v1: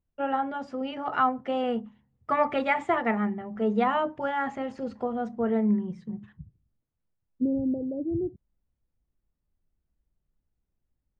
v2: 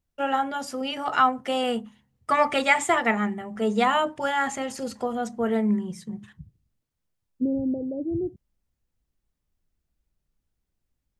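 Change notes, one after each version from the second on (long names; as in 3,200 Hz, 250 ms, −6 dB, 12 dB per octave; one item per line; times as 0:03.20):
master: remove head-to-tape spacing loss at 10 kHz 36 dB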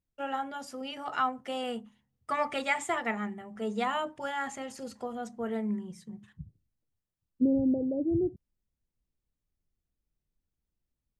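first voice −9.0 dB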